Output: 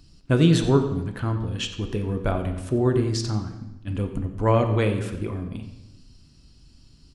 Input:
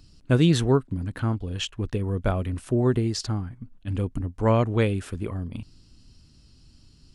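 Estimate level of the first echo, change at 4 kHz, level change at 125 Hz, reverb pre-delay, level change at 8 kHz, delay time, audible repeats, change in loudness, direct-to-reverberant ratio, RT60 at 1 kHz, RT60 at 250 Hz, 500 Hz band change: -15.5 dB, +1.0 dB, +1.0 dB, 3 ms, +0.5 dB, 89 ms, 1, +1.5 dB, 4.5 dB, 0.90 s, 1.2 s, +1.5 dB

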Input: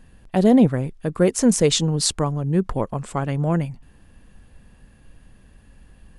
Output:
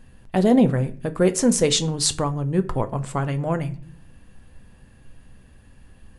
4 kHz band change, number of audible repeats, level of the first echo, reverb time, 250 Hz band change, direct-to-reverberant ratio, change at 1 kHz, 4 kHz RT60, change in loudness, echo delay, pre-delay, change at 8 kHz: +0.5 dB, no echo, no echo, 0.45 s, -2.0 dB, 8.5 dB, 0.0 dB, 0.30 s, -1.0 dB, no echo, 8 ms, +0.5 dB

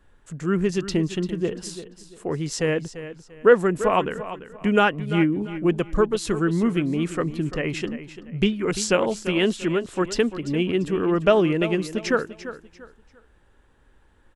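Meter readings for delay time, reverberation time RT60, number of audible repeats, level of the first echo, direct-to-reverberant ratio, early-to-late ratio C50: 343 ms, no reverb, 3, -13.0 dB, no reverb, no reverb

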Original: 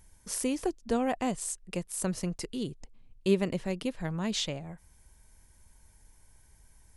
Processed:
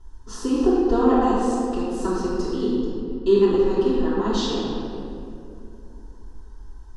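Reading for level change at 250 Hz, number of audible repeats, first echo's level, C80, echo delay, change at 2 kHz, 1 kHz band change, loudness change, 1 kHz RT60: +11.0 dB, no echo, no echo, -1.0 dB, no echo, +3.5 dB, +12.5 dB, +10.5 dB, 2.3 s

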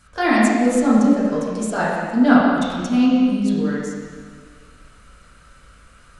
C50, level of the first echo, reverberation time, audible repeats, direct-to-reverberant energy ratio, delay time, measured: -2.0 dB, no echo, 1.8 s, no echo, -9.0 dB, no echo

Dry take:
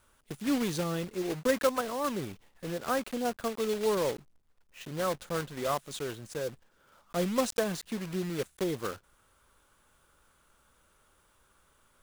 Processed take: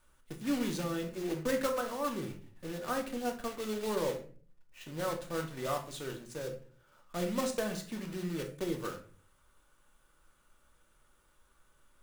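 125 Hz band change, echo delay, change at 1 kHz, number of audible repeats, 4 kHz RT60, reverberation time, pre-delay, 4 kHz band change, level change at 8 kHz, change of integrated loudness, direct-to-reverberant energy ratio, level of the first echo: -3.0 dB, no echo, -4.0 dB, no echo, 0.30 s, 0.40 s, 3 ms, -4.0 dB, -4.0 dB, -3.5 dB, 2.5 dB, no echo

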